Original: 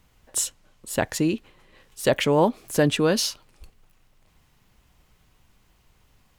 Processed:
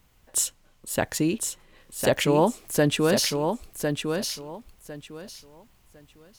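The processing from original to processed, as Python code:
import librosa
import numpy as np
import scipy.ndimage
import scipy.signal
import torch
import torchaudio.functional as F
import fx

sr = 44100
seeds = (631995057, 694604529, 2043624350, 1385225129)

y = fx.high_shelf(x, sr, hz=10000.0, db=6.0)
y = fx.echo_feedback(y, sr, ms=1054, feedback_pct=22, wet_db=-5.5)
y = y * librosa.db_to_amplitude(-1.5)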